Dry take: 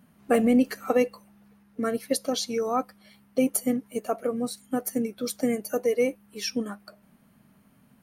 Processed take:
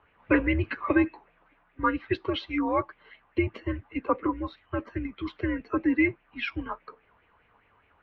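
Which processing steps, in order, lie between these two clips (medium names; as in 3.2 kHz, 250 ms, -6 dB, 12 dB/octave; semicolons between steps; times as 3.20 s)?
mistuned SSB -170 Hz 320–3400 Hz; sweeping bell 4.9 Hz 940–2500 Hz +12 dB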